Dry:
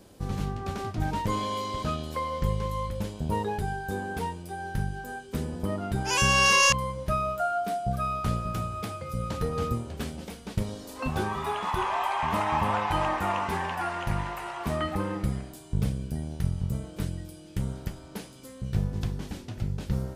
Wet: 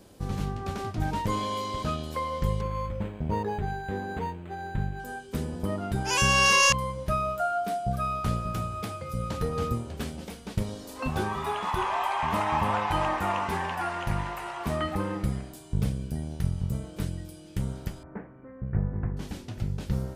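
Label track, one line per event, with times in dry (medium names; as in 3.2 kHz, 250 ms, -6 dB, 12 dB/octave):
2.610000	5.000000	decimation joined by straight lines rate divided by 8×
18.030000	19.170000	steep low-pass 2 kHz 48 dB/octave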